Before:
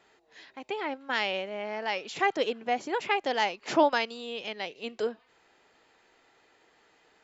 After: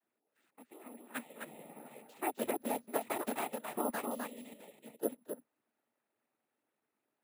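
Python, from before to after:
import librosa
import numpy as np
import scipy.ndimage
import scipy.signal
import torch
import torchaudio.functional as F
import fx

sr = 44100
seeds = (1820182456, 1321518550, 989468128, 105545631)

y = fx.block_float(x, sr, bits=3, at=(2.34, 3.35))
y = fx.level_steps(y, sr, step_db=14)
y = y + 10.0 ** (-3.5 / 20.0) * np.pad(y, (int(258 * sr / 1000.0), 0))[:len(y)]
y = fx.noise_vocoder(y, sr, seeds[0], bands=12)
y = fx.peak_eq(y, sr, hz=240.0, db=11.0, octaves=0.37)
y = (np.kron(scipy.signal.resample_poly(y, 1, 4), np.eye(4)[0]) * 4)[:len(y)]
y = fx.lowpass(y, sr, hz=1500.0, slope=6)
y = fx.upward_expand(y, sr, threshold_db=-49.0, expansion=1.5)
y = y * librosa.db_to_amplitude(-4.0)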